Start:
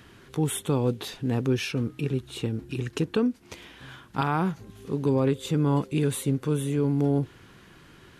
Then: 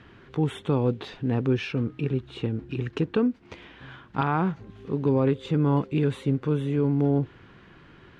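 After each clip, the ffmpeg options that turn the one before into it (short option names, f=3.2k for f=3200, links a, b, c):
-af "lowpass=2.9k,volume=1dB"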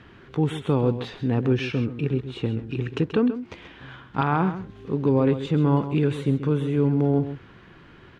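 -af "aecho=1:1:132:0.266,volume=2dB"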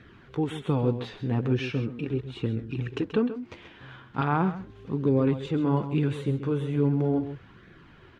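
-af "flanger=delay=0.5:depth=9.1:regen=-37:speed=0.39:shape=sinusoidal"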